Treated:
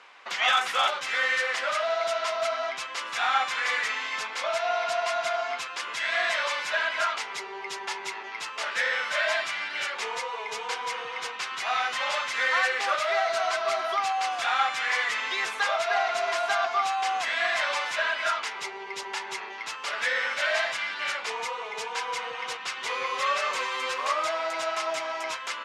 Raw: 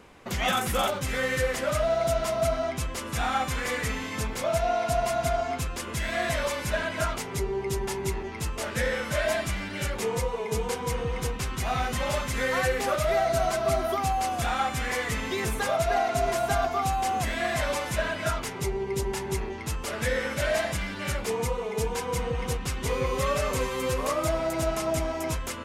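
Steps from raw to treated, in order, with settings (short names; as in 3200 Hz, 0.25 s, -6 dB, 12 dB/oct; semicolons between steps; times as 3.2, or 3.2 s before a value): Butterworth band-pass 2200 Hz, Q 0.54; gain +5.5 dB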